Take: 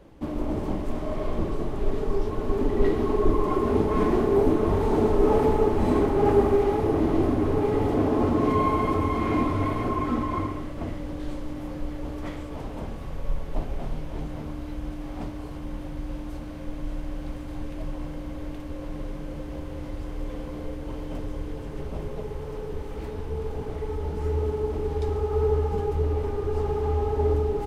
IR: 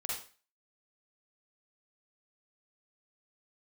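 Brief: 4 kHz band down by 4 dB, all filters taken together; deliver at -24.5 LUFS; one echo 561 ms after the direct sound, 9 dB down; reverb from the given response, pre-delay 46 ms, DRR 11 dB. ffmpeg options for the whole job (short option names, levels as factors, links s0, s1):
-filter_complex "[0:a]equalizer=f=4000:t=o:g=-5.5,aecho=1:1:561:0.355,asplit=2[s0][s1];[1:a]atrim=start_sample=2205,adelay=46[s2];[s1][s2]afir=irnorm=-1:irlink=0,volume=0.224[s3];[s0][s3]amix=inputs=2:normalize=0,volume=1.33"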